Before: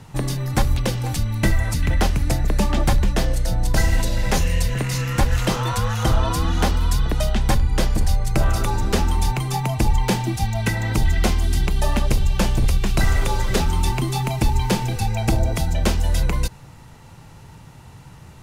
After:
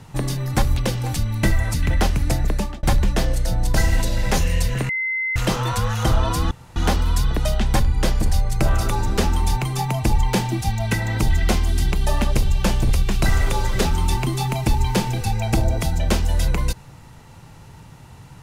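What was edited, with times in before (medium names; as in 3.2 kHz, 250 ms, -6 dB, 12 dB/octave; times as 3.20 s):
2.47–2.83 s: fade out
4.89–5.36 s: bleep 2.06 kHz -20.5 dBFS
6.51 s: insert room tone 0.25 s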